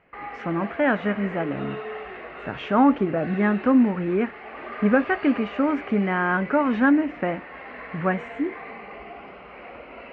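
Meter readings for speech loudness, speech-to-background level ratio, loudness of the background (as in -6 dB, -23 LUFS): -23.0 LUFS, 14.5 dB, -37.5 LUFS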